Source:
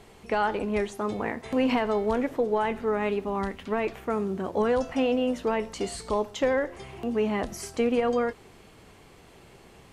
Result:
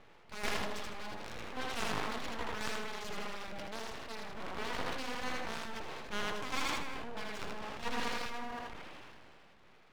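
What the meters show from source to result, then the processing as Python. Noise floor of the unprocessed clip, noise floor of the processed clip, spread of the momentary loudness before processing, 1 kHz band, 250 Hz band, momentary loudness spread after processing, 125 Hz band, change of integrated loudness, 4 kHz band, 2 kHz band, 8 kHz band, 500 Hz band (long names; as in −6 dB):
−53 dBFS, −59 dBFS, 6 LU, −9.5 dB, −17.0 dB, 8 LU, −10.5 dB, −12.0 dB, −0.5 dB, −4.5 dB, −4.0 dB, −18.0 dB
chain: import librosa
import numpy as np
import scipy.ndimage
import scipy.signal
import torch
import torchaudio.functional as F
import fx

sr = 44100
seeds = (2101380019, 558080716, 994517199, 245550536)

y = fx.reverse_delay(x, sr, ms=224, wet_db=-7.0)
y = scipy.signal.sosfilt(scipy.signal.butter(4, 2800.0, 'lowpass', fs=sr, output='sos'), y)
y = fx.low_shelf(y, sr, hz=190.0, db=-5.5)
y = fx.hum_notches(y, sr, base_hz=50, count=5)
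y = fx.cheby_harmonics(y, sr, harmonics=(2, 3, 7), levels_db=(-13, -8, -43), full_scale_db=-13.0)
y = 10.0 ** (-25.0 / 20.0) * np.tanh(y / 10.0 ** (-25.0 / 20.0))
y = fx.tremolo_shape(y, sr, shape='saw_down', hz=2.3, depth_pct=80)
y = fx.transient(y, sr, attack_db=-6, sustain_db=2)
y = np.abs(y)
y = fx.echo_thinned(y, sr, ms=80, feedback_pct=35, hz=230.0, wet_db=-3.5)
y = fx.sustainer(y, sr, db_per_s=20.0)
y = F.gain(torch.from_numpy(y), 8.5).numpy()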